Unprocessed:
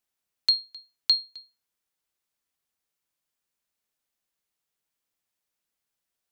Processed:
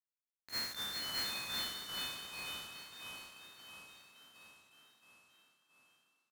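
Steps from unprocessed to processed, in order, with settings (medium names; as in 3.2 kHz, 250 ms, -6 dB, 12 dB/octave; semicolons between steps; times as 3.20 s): spectral sustain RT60 1.75 s; recorder AGC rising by 13 dB/s; transient shaper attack -8 dB, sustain +7 dB; resonant high shelf 2.6 kHz -11 dB, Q 3; word length cut 6-bit, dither none; fifteen-band graphic EQ 100 Hz +5 dB, 250 Hz +6 dB, 6.3 kHz +4 dB; gate -29 dBFS, range -35 dB; on a send: frequency-shifting echo 401 ms, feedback 58%, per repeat +32 Hz, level -4 dB; on the sum: ever faster or slower copies 136 ms, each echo -3 st, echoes 3; trim +16 dB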